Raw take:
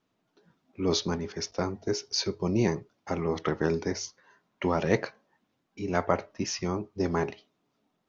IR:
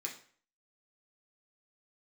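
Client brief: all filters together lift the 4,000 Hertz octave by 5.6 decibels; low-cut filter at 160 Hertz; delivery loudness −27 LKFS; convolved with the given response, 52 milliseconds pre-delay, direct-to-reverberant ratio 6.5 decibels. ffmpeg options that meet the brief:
-filter_complex "[0:a]highpass=160,equalizer=frequency=4000:width_type=o:gain=7,asplit=2[link_01][link_02];[1:a]atrim=start_sample=2205,adelay=52[link_03];[link_02][link_03]afir=irnorm=-1:irlink=0,volume=-6dB[link_04];[link_01][link_04]amix=inputs=2:normalize=0,volume=1.5dB"

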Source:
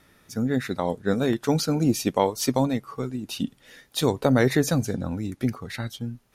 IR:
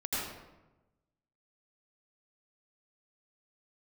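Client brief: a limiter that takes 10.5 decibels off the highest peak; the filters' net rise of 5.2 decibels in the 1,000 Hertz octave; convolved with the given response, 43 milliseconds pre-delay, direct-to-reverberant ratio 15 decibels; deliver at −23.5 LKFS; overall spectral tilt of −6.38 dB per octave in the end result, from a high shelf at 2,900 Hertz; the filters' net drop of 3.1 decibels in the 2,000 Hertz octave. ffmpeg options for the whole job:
-filter_complex "[0:a]equalizer=frequency=1000:width_type=o:gain=8,equalizer=frequency=2000:width_type=o:gain=-5.5,highshelf=frequency=2900:gain=-4.5,alimiter=limit=-14dB:level=0:latency=1,asplit=2[link_01][link_02];[1:a]atrim=start_sample=2205,adelay=43[link_03];[link_02][link_03]afir=irnorm=-1:irlink=0,volume=-21dB[link_04];[link_01][link_04]amix=inputs=2:normalize=0,volume=4dB"

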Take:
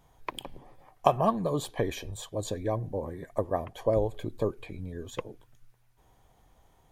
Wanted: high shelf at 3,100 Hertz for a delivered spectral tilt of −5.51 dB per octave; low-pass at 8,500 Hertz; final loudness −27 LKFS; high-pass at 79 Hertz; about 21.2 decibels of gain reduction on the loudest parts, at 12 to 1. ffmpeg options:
ffmpeg -i in.wav -af "highpass=79,lowpass=8500,highshelf=frequency=3100:gain=-5,acompressor=threshold=-41dB:ratio=12,volume=20.5dB" out.wav

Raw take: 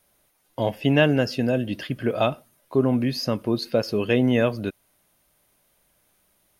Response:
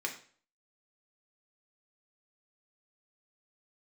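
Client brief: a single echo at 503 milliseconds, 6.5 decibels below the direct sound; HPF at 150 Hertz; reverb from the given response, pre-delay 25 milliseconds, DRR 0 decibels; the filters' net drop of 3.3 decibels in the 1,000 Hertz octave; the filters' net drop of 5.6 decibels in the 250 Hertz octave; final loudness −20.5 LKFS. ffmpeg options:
-filter_complex "[0:a]highpass=150,equalizer=frequency=250:width_type=o:gain=-5.5,equalizer=frequency=1000:width_type=o:gain=-4.5,aecho=1:1:503:0.473,asplit=2[link_01][link_02];[1:a]atrim=start_sample=2205,adelay=25[link_03];[link_02][link_03]afir=irnorm=-1:irlink=0,volume=-3.5dB[link_04];[link_01][link_04]amix=inputs=2:normalize=0,volume=3.5dB"

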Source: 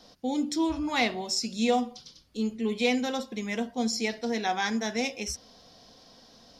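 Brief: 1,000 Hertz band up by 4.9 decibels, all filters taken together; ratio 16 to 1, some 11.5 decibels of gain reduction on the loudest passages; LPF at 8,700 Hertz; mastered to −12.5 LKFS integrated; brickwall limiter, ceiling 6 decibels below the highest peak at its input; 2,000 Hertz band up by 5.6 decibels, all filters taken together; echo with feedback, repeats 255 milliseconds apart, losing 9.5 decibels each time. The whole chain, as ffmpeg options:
ffmpeg -i in.wav -af "lowpass=8700,equalizer=frequency=1000:width_type=o:gain=6.5,equalizer=frequency=2000:width_type=o:gain=5,acompressor=threshold=-28dB:ratio=16,alimiter=level_in=0.5dB:limit=-24dB:level=0:latency=1,volume=-0.5dB,aecho=1:1:255|510|765|1020:0.335|0.111|0.0365|0.012,volume=21.5dB" out.wav

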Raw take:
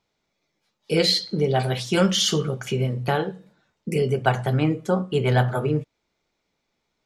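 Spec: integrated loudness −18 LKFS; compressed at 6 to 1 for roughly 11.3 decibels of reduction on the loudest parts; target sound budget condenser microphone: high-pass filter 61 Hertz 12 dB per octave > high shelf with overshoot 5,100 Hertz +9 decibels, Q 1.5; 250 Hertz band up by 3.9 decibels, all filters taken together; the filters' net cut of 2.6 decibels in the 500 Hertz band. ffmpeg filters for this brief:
ffmpeg -i in.wav -af "equalizer=frequency=250:width_type=o:gain=8,equalizer=frequency=500:width_type=o:gain=-6,acompressor=threshold=-24dB:ratio=6,highpass=61,highshelf=frequency=5100:width_type=q:width=1.5:gain=9,volume=10dB" out.wav

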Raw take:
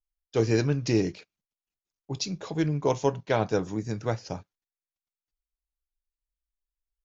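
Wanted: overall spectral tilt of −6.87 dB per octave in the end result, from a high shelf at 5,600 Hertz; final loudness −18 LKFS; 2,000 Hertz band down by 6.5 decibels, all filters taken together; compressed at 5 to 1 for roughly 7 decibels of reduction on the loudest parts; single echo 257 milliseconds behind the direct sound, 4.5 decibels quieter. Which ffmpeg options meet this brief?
ffmpeg -i in.wav -af "equalizer=frequency=2000:width_type=o:gain=-8,highshelf=frequency=5600:gain=-6.5,acompressor=threshold=-26dB:ratio=5,aecho=1:1:257:0.596,volume=14dB" out.wav

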